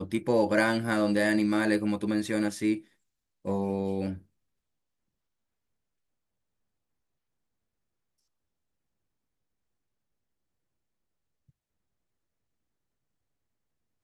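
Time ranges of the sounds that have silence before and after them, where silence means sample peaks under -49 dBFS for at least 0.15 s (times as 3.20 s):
3.45–4.22 s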